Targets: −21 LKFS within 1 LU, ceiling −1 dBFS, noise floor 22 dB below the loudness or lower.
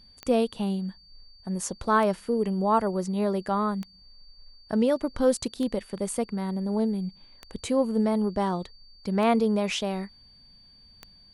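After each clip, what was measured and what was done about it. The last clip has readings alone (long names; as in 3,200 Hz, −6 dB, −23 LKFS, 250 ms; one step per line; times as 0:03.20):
number of clicks 7; interfering tone 4,600 Hz; level of the tone −53 dBFS; integrated loudness −27.0 LKFS; sample peak −10.0 dBFS; target loudness −21.0 LKFS
→ click removal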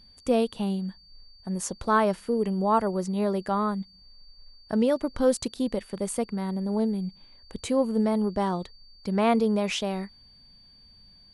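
number of clicks 0; interfering tone 4,600 Hz; level of the tone −53 dBFS
→ notch filter 4,600 Hz, Q 30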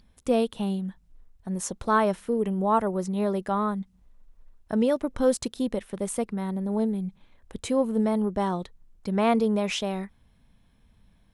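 interfering tone none found; integrated loudness −27.0 LKFS; sample peak −10.0 dBFS; target loudness −21.0 LKFS
→ level +6 dB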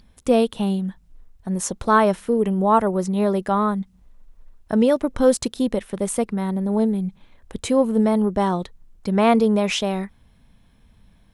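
integrated loudness −21.0 LKFS; sample peak −4.0 dBFS; background noise floor −56 dBFS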